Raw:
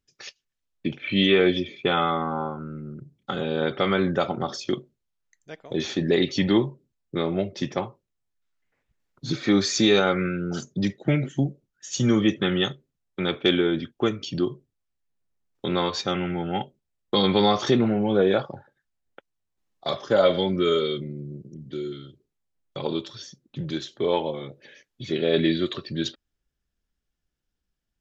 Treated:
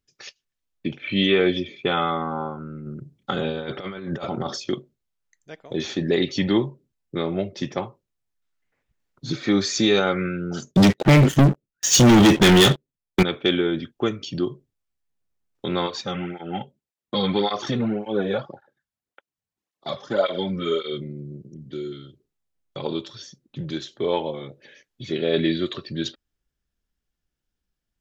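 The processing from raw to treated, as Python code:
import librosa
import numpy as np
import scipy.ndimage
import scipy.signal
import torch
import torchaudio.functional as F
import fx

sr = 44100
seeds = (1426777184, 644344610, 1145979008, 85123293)

y = fx.over_compress(x, sr, threshold_db=-27.0, ratio=-0.5, at=(2.86, 4.59))
y = fx.leveller(y, sr, passes=5, at=(10.71, 13.23))
y = fx.flanger_cancel(y, sr, hz=1.8, depth_ms=3.4, at=(15.86, 20.92), fade=0.02)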